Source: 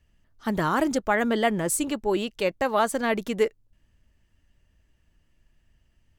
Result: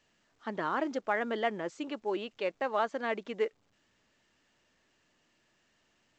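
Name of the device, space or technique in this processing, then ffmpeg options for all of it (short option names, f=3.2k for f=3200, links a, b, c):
telephone: -af "highpass=300,lowpass=3.4k,volume=-7dB" -ar 16000 -c:a pcm_alaw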